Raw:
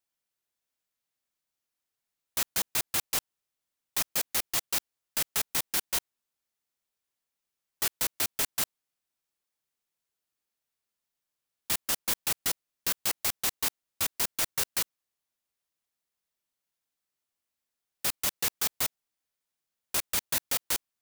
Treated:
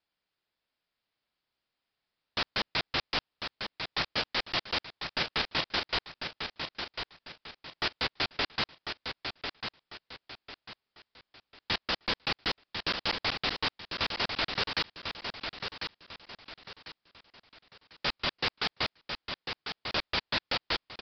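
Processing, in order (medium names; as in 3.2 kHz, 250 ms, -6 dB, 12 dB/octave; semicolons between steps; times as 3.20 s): wavefolder -21.5 dBFS; feedback delay 1047 ms, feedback 34%, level -6.5 dB; resampled via 11.025 kHz; trim +5.5 dB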